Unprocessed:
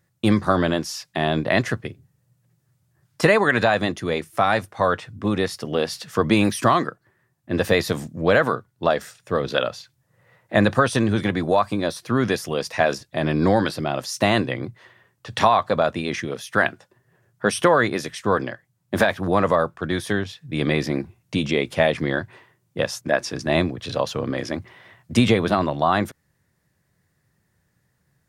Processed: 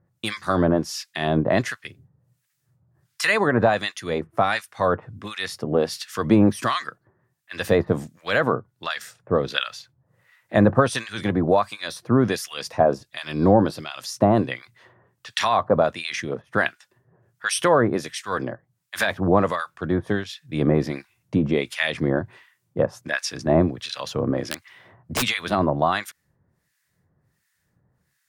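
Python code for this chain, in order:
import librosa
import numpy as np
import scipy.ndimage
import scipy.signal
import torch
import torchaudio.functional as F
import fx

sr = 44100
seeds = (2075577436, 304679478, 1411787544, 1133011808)

y = fx.dynamic_eq(x, sr, hz=1900.0, q=1.7, threshold_db=-38.0, ratio=4.0, max_db=-6, at=(12.61, 14.42))
y = fx.overflow_wrap(y, sr, gain_db=13.5, at=(24.38, 25.21), fade=0.02)
y = fx.harmonic_tremolo(y, sr, hz=1.4, depth_pct=100, crossover_hz=1300.0)
y = y * librosa.db_to_amplitude(3.5)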